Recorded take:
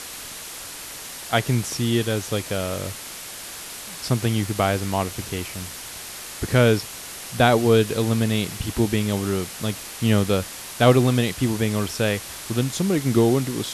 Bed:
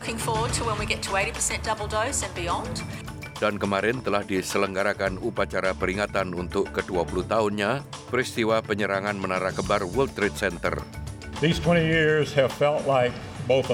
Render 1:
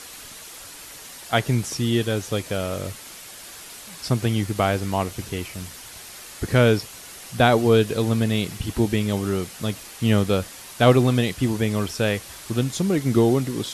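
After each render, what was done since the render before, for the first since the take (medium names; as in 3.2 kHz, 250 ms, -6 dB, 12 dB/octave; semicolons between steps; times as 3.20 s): noise reduction 6 dB, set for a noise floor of -37 dBFS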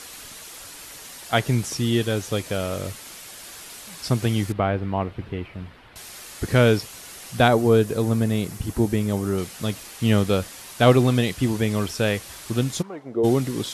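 4.52–5.96 s: distance through air 450 m; 7.48–9.38 s: peaking EQ 3.2 kHz -8 dB 1.5 oct; 12.81–13.23 s: band-pass filter 1.2 kHz -> 450 Hz, Q 2.4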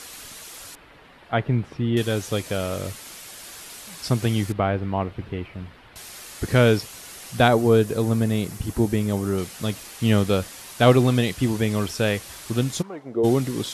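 0.75–1.97 s: distance through air 480 m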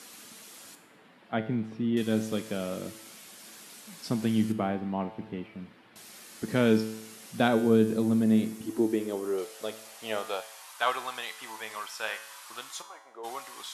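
feedback comb 110 Hz, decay 0.8 s, harmonics all, mix 70%; high-pass sweep 200 Hz -> 1 kHz, 8.14–10.81 s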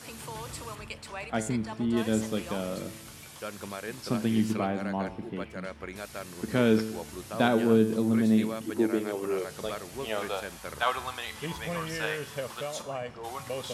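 add bed -14.5 dB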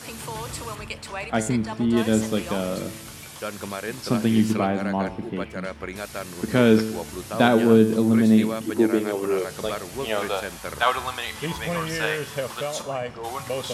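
trim +6.5 dB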